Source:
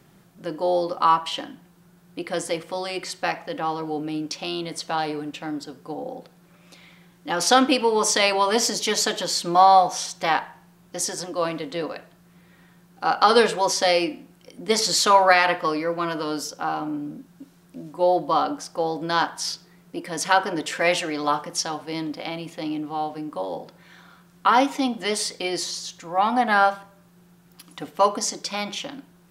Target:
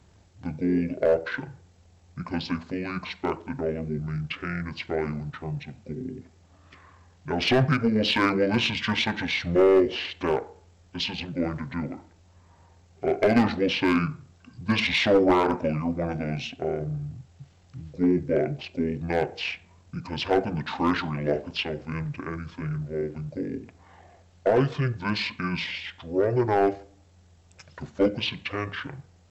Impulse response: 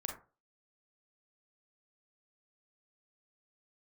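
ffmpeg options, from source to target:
-af "asetrate=22050,aresample=44100,atempo=2,acontrast=46,aeval=exprs='clip(val(0),-1,0.447)':channel_layout=same,volume=-7.5dB"

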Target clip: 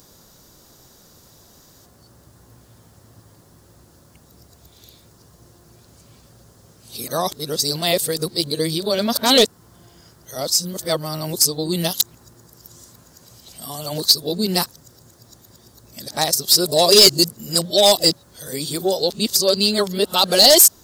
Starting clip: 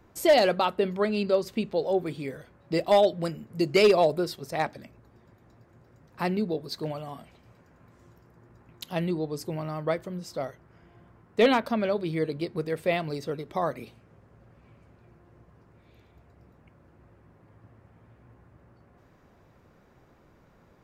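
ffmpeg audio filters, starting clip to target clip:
ffmpeg -i in.wav -af "areverse,aexciter=amount=11.1:drive=6.3:freq=3600,acontrast=67,volume=-1dB" out.wav

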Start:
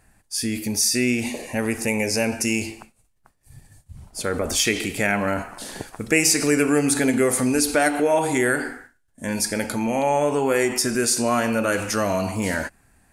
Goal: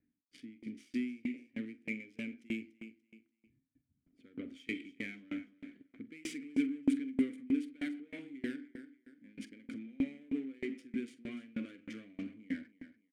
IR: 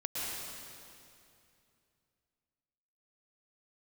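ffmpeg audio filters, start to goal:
-filter_complex "[0:a]adynamicsmooth=sensitivity=2.5:basefreq=1100,aecho=1:1:290|580|870:0.188|0.0622|0.0205,asoftclip=type=tanh:threshold=-17dB,asplit=3[link_01][link_02][link_03];[link_01]bandpass=frequency=270:width_type=q:width=8,volume=0dB[link_04];[link_02]bandpass=frequency=2290:width_type=q:width=8,volume=-6dB[link_05];[link_03]bandpass=frequency=3010:width_type=q:width=8,volume=-9dB[link_06];[link_04][link_05][link_06]amix=inputs=3:normalize=0,highshelf=frequency=7000:width_type=q:width=1.5:gain=7,bandreject=frequency=610:width=12,asplit=2[link_07][link_08];[link_08]adelay=45,volume=-12.5dB[link_09];[link_07][link_09]amix=inputs=2:normalize=0,aeval=exprs='val(0)*pow(10,-28*if(lt(mod(3.2*n/s,1),2*abs(3.2)/1000),1-mod(3.2*n/s,1)/(2*abs(3.2)/1000),(mod(3.2*n/s,1)-2*abs(3.2)/1000)/(1-2*abs(3.2)/1000))/20)':channel_layout=same,volume=1.5dB"

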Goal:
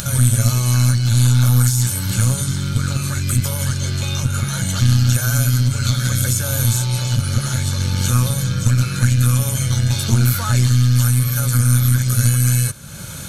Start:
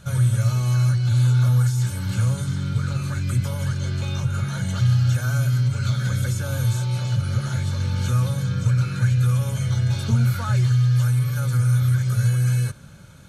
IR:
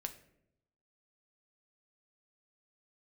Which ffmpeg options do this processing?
-af "aeval=exprs='0.335*(cos(1*acos(clip(val(0)/0.335,-1,1)))-cos(1*PI/2))+0.0944*(cos(2*acos(clip(val(0)/0.335,-1,1)))-cos(2*PI/2))':channel_layout=same,acompressor=mode=upward:threshold=-25dB:ratio=2.5,crystalizer=i=3:c=0,volume=3.5dB"

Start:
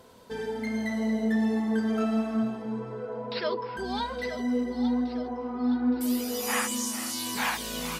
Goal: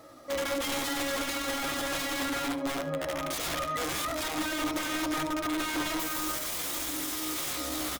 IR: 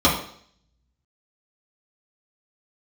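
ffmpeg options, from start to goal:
-filter_complex "[0:a]bandreject=frequency=115.6:width_type=h:width=4,bandreject=frequency=231.2:width_type=h:width=4,bandreject=frequency=346.8:width_type=h:width=4,bandreject=frequency=462.4:width_type=h:width=4,bandreject=frequency=578:width_type=h:width=4,bandreject=frequency=693.6:width_type=h:width=4,bandreject=frequency=809.2:width_type=h:width=4,bandreject=frequency=924.8:width_type=h:width=4,bandreject=frequency=1040.4:width_type=h:width=4,bandreject=frequency=1156:width_type=h:width=4,bandreject=frequency=1271.6:width_type=h:width=4,bandreject=frequency=1387.2:width_type=h:width=4,bandreject=frequency=1502.8:width_type=h:width=4,bandreject=frequency=1618.4:width_type=h:width=4,bandreject=frequency=1734:width_type=h:width=4,bandreject=frequency=1849.6:width_type=h:width=4,bandreject=frequency=1965.2:width_type=h:width=4,bandreject=frequency=2080.8:width_type=h:width=4,bandreject=frequency=2196.4:width_type=h:width=4,bandreject=frequency=2312:width_type=h:width=4,bandreject=frequency=2427.6:width_type=h:width=4,bandreject=frequency=2543.2:width_type=h:width=4,bandreject=frequency=2658.8:width_type=h:width=4,bandreject=frequency=2774.4:width_type=h:width=4,bandreject=frequency=2890:width_type=h:width=4,bandreject=frequency=3005.6:width_type=h:width=4,bandreject=frequency=3121.2:width_type=h:width=4,bandreject=frequency=3236.8:width_type=h:width=4,bandreject=frequency=3352.4:width_type=h:width=4,bandreject=frequency=3468:width_type=h:width=4,aeval=exprs='(mod(26.6*val(0)+1,2)-1)/26.6':channel_layout=same,asetrate=55563,aresample=44100,atempo=0.793701,aecho=1:1:74:0.188,asplit=2[link_01][link_02];[1:a]atrim=start_sample=2205,atrim=end_sample=3528[link_03];[link_02][link_03]afir=irnorm=-1:irlink=0,volume=-26dB[link_04];[link_01][link_04]amix=inputs=2:normalize=0"

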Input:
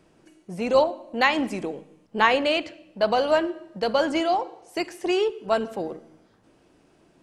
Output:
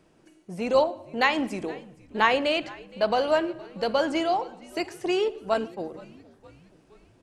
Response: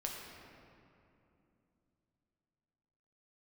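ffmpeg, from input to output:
-filter_complex "[0:a]asettb=1/sr,asplit=3[link_01][link_02][link_03];[link_01]atrim=end=5.544[link_04];[link_02]atrim=start=5.54:end=5.94,asetpts=PTS-STARTPTS,afade=type=in:duration=0.004:curve=qsin,afade=type=out:start_time=0.396:duration=0.004:curve=qsin,agate=range=-33dB:threshold=-26dB:ratio=3:detection=peak[link_05];[link_03]atrim=start=5.936[link_06];[link_04][link_05]acrossfade=duration=0.004:curve1=hsin:curve2=qsin[link_07];[link_07][link_06]acrossfade=duration=0.004:curve1=qsin:curve2=hsin,asplit=5[link_08][link_09][link_10][link_11][link_12];[link_09]adelay=467,afreqshift=-82,volume=-22dB[link_13];[link_10]adelay=934,afreqshift=-164,volume=-26.9dB[link_14];[link_11]adelay=1401,afreqshift=-246,volume=-31.8dB[link_15];[link_12]adelay=1868,afreqshift=-328,volume=-36.6dB[link_16];[link_08][link_13][link_14][link_15][link_16]amix=inputs=5:normalize=0,volume=-2dB"

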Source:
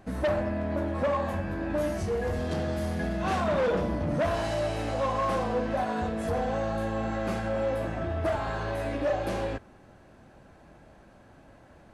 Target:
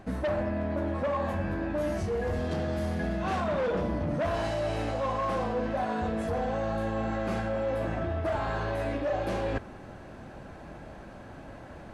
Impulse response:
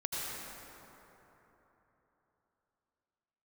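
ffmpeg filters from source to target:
-af "highshelf=frequency=6500:gain=-6.5,areverse,acompressor=threshold=-37dB:ratio=6,areverse,volume=9dB"

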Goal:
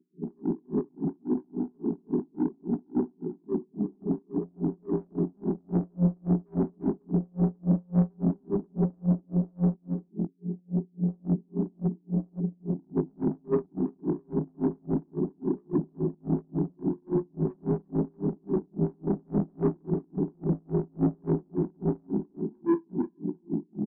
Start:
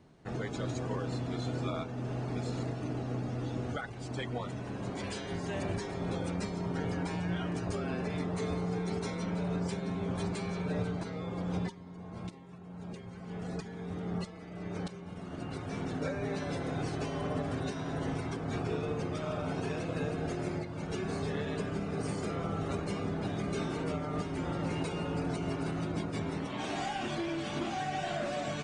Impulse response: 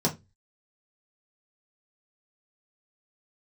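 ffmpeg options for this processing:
-filter_complex "[0:a]bandreject=frequency=226.7:width_type=h:width=4,bandreject=frequency=453.4:width_type=h:width=4,bandreject=frequency=680.1:width_type=h:width=4,bandreject=frequency=906.8:width_type=h:width=4,bandreject=frequency=1133.5:width_type=h:width=4,bandreject=frequency=1360.2:width_type=h:width=4,bandreject=frequency=1586.9:width_type=h:width=4,bandreject=frequency=1813.6:width_type=h:width=4,bandreject=frequency=2040.3:width_type=h:width=4,bandreject=frequency=2267:width_type=h:width=4,bandreject=frequency=2493.7:width_type=h:width=4,bandreject=frequency=2720.4:width_type=h:width=4,apsyclip=31.5dB,dynaudnorm=framelen=270:gausssize=5:maxgain=7dB,flanger=delay=16:depth=3.4:speed=0.54,afftfilt=real='re*between(b*sr/4096,160,430)':imag='im*between(b*sr/4096,160,430)':win_size=4096:overlap=0.75,asoftclip=type=tanh:threshold=-9.5dB,atempo=1.2,asplit=2[link_01][link_02];[link_02]aecho=0:1:345:0.266[link_03];[link_01][link_03]amix=inputs=2:normalize=0,aeval=exprs='val(0)*pow(10,-40*(0.5-0.5*cos(2*PI*3.6*n/s))/20)':channel_layout=same,volume=-7.5dB"

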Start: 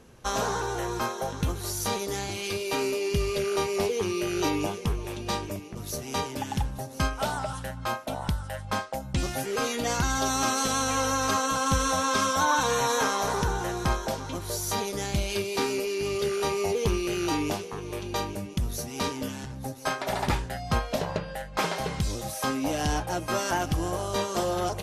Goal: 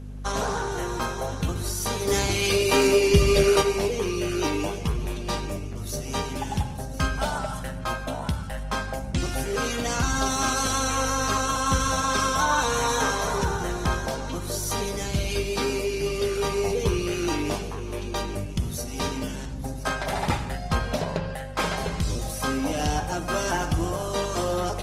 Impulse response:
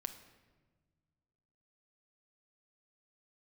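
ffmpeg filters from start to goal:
-filter_complex "[0:a]asplit=3[link_01][link_02][link_03];[link_01]afade=type=out:start_time=2.06:duration=0.02[link_04];[link_02]acontrast=90,afade=type=in:start_time=2.06:duration=0.02,afade=type=out:start_time=3.61:duration=0.02[link_05];[link_03]afade=type=in:start_time=3.61:duration=0.02[link_06];[link_04][link_05][link_06]amix=inputs=3:normalize=0,aeval=exprs='val(0)+0.0158*(sin(2*PI*50*n/s)+sin(2*PI*2*50*n/s)/2+sin(2*PI*3*50*n/s)/3+sin(2*PI*4*50*n/s)/4+sin(2*PI*5*50*n/s)/5)':channel_layout=same[link_07];[1:a]atrim=start_sample=2205,atrim=end_sample=4410,asetrate=22491,aresample=44100[link_08];[link_07][link_08]afir=irnorm=-1:irlink=0" -ar 48000 -c:a libopus -b:a 20k

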